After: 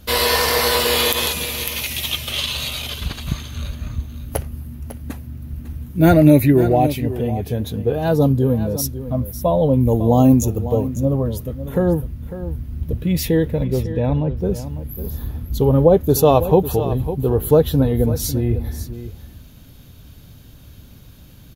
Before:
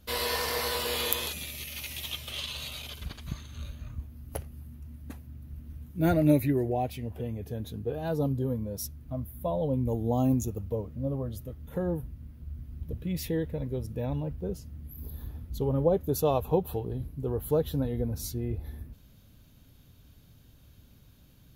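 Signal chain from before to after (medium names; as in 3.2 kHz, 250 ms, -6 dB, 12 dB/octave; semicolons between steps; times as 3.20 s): 13.64–14.37 s: distance through air 130 m; on a send: delay 550 ms -13 dB; on the sum: loudness maximiser +14 dB; trim -1 dB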